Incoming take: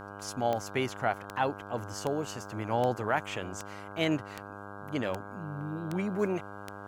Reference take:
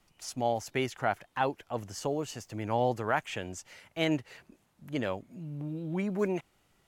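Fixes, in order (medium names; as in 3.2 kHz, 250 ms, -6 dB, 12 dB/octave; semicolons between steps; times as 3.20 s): de-click; de-hum 100.7 Hz, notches 16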